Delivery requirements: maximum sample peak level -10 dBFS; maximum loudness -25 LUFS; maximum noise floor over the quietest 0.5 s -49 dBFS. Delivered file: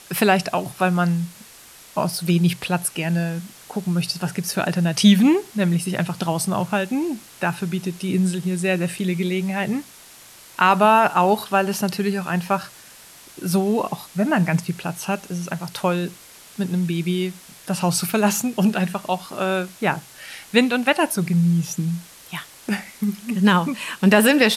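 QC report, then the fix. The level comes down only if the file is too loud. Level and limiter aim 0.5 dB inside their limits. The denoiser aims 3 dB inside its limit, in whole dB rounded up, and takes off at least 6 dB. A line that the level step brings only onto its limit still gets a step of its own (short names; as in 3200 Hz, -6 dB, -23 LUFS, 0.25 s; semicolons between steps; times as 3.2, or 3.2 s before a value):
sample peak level -4.0 dBFS: fail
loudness -21.5 LUFS: fail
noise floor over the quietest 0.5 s -45 dBFS: fail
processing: denoiser 6 dB, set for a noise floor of -45 dBFS; gain -4 dB; limiter -10.5 dBFS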